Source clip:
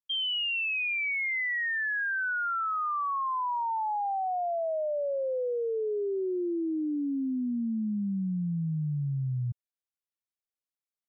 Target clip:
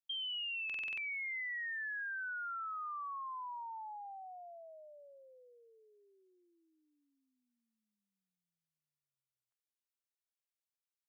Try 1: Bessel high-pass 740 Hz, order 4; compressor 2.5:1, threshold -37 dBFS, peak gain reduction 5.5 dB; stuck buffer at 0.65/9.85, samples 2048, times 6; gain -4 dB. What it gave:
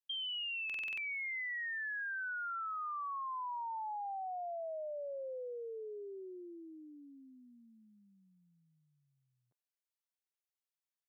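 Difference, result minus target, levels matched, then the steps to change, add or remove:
1000 Hz band +3.5 dB
change: Bessel high-pass 1600 Hz, order 4

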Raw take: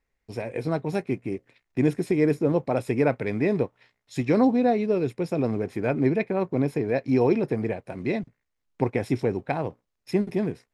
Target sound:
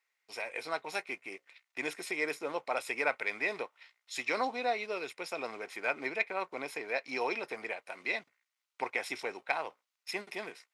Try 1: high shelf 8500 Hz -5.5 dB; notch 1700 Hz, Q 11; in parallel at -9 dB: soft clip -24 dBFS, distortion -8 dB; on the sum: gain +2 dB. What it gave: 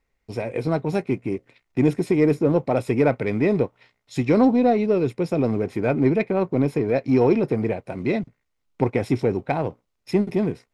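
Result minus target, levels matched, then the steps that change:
1000 Hz band -6.0 dB
add first: HPF 1300 Hz 12 dB/oct

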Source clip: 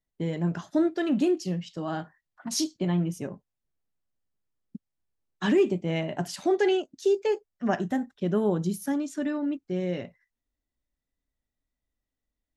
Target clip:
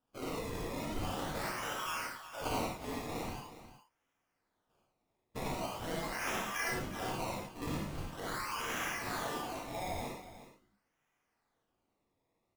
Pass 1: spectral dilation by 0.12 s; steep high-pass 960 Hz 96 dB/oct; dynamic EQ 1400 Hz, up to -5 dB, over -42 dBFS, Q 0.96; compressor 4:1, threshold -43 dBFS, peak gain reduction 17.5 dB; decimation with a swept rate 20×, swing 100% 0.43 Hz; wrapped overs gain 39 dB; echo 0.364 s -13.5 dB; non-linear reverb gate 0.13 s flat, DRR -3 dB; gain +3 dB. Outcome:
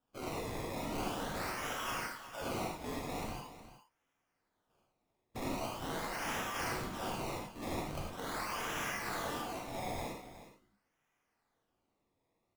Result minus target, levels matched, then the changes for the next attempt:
wrapped overs: distortion +16 dB
change: wrapped overs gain 32 dB

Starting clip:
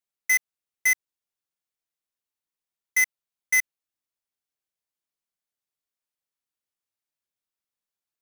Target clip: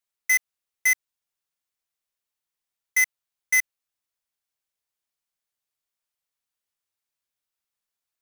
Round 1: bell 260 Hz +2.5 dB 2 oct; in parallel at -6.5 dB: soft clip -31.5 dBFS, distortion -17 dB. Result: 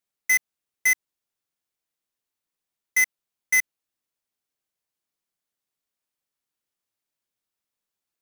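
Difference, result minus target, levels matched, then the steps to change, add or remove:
250 Hz band +6.0 dB
change: bell 260 Hz -5.5 dB 2 oct

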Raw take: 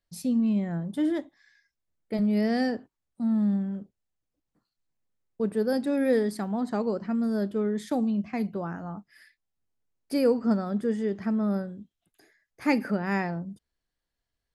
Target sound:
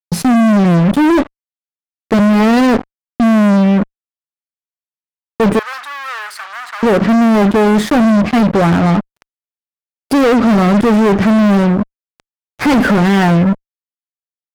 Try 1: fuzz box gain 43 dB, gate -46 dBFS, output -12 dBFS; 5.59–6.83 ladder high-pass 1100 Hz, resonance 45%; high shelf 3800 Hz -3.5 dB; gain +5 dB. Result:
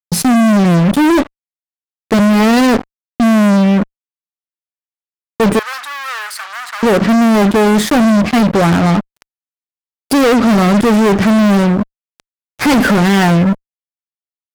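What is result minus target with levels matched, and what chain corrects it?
8000 Hz band +6.5 dB
fuzz box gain 43 dB, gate -46 dBFS, output -12 dBFS; 5.59–6.83 ladder high-pass 1100 Hz, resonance 45%; high shelf 3800 Hz -12 dB; gain +5 dB

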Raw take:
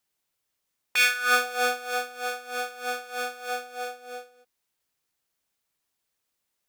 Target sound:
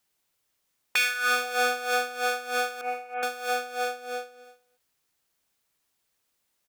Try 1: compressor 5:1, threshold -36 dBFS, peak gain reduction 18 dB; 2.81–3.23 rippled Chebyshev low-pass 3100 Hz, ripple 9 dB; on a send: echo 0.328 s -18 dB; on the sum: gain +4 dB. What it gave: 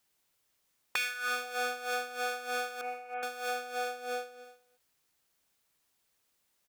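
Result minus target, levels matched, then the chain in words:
compressor: peak gain reduction +9 dB
compressor 5:1, threshold -25 dBFS, peak gain reduction 9 dB; 2.81–3.23 rippled Chebyshev low-pass 3100 Hz, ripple 9 dB; on a send: echo 0.328 s -18 dB; on the sum: gain +4 dB

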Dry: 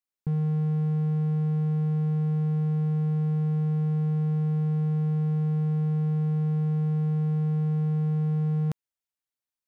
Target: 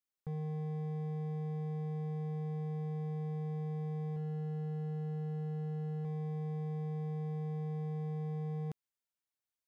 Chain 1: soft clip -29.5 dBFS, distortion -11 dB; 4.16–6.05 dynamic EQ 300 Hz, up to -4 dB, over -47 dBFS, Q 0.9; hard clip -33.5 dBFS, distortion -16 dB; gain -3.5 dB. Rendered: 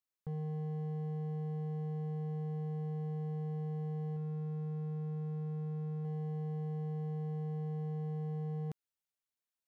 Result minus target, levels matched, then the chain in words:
soft clip: distortion +10 dB
soft clip -21 dBFS, distortion -22 dB; 4.16–6.05 dynamic EQ 300 Hz, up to -4 dB, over -47 dBFS, Q 0.9; hard clip -33.5 dBFS, distortion -9 dB; gain -3.5 dB

